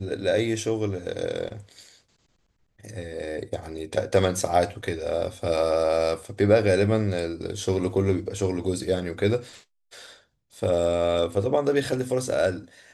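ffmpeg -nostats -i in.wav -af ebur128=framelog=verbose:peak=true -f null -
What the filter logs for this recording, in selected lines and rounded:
Integrated loudness:
  I:         -25.2 LUFS
  Threshold: -36.1 LUFS
Loudness range:
  LRA:         6.9 LU
  Threshold: -46.1 LUFS
  LRA low:   -30.6 LUFS
  LRA high:  -23.7 LUFS
True peak:
  Peak:       -7.1 dBFS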